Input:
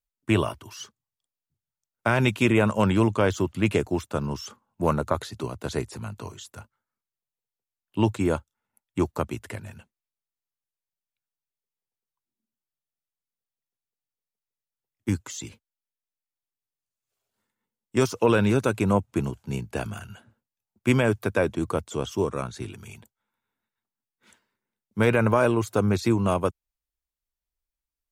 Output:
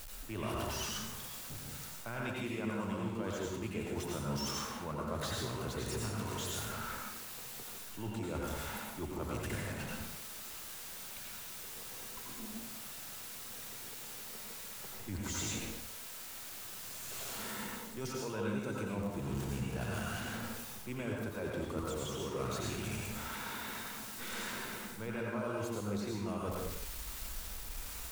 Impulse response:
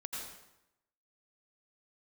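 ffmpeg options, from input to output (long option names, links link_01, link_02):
-filter_complex "[0:a]aeval=exprs='val(0)+0.5*0.0299*sgn(val(0))':channel_layout=same,areverse,acompressor=threshold=-29dB:ratio=16,areverse[link_01];[1:a]atrim=start_sample=2205,afade=type=out:start_time=0.42:duration=0.01,atrim=end_sample=18963[link_02];[link_01][link_02]afir=irnorm=-1:irlink=0,volume=-4dB"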